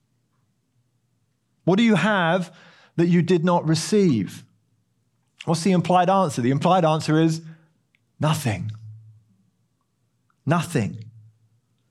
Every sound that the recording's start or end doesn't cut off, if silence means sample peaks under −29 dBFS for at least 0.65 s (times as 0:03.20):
0:01.67–0:04.37
0:05.41–0:07.39
0:08.21–0:08.71
0:10.47–0:10.95